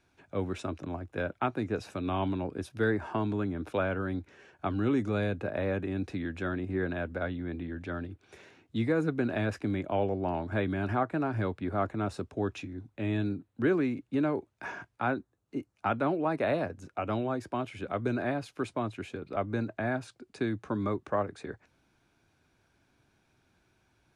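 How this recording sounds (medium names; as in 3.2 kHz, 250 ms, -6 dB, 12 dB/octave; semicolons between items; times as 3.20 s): noise floor -72 dBFS; spectral tilt -4.5 dB/octave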